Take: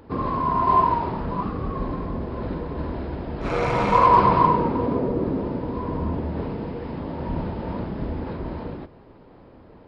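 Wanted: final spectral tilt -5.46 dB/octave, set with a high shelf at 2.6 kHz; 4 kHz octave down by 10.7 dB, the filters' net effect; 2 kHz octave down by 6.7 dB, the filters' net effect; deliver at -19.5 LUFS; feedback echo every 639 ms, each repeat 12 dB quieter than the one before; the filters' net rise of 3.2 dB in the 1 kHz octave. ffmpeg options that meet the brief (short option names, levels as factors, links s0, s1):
-af "equalizer=f=1000:t=o:g=6,equalizer=f=2000:t=o:g=-7,highshelf=f=2600:g=-8,equalizer=f=4000:t=o:g=-5,aecho=1:1:639|1278|1917:0.251|0.0628|0.0157,volume=1.19"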